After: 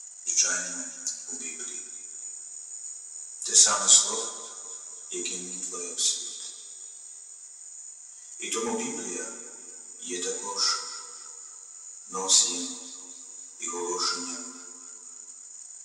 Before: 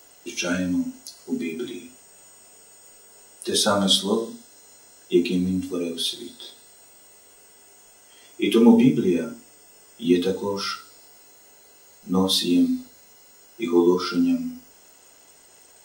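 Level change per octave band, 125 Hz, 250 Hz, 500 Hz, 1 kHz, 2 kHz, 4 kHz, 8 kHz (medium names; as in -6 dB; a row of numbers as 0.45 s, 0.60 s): under -20 dB, -21.0 dB, -13.0 dB, -3.0 dB, -3.0 dB, -2.5 dB, +12.0 dB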